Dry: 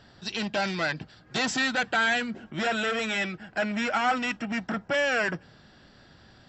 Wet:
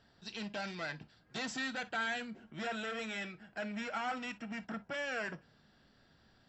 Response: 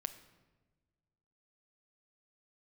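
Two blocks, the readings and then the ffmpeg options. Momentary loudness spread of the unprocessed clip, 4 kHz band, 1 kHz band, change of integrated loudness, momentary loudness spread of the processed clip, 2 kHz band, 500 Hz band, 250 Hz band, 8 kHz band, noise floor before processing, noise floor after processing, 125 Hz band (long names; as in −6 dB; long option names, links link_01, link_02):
8 LU, −12.5 dB, −12.0 dB, −12.0 dB, 7 LU, −12.5 dB, −12.5 dB, −11.0 dB, can't be measured, −56 dBFS, −68 dBFS, −12.0 dB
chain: -filter_complex "[1:a]atrim=start_sample=2205,atrim=end_sample=4410,asetrate=66150,aresample=44100[link_01];[0:a][link_01]afir=irnorm=-1:irlink=0,volume=-7dB"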